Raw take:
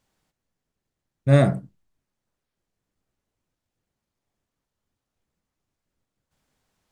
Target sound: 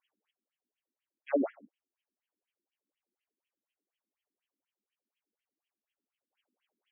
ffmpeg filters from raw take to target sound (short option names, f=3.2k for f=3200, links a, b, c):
-af "highshelf=f=2.5k:t=q:w=1.5:g=12.5,afftfilt=real='re*between(b*sr/1024,260*pow(2400/260,0.5+0.5*sin(2*PI*4.1*pts/sr))/1.41,260*pow(2400/260,0.5+0.5*sin(2*PI*4.1*pts/sr))*1.41)':imag='im*between(b*sr/1024,260*pow(2400/260,0.5+0.5*sin(2*PI*4.1*pts/sr))/1.41,260*pow(2400/260,0.5+0.5*sin(2*PI*4.1*pts/sr))*1.41)':win_size=1024:overlap=0.75,volume=-3dB"